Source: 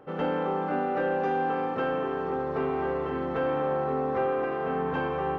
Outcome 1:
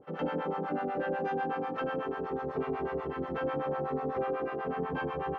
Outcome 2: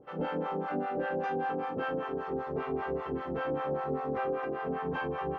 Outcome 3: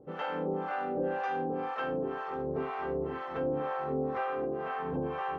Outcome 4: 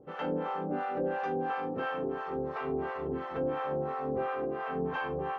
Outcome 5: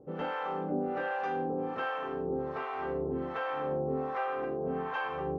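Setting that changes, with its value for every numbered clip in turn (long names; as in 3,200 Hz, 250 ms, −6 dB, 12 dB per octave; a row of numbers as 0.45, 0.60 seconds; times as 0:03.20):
two-band tremolo in antiphase, speed: 8.1, 5.1, 2, 2.9, 1.3 Hertz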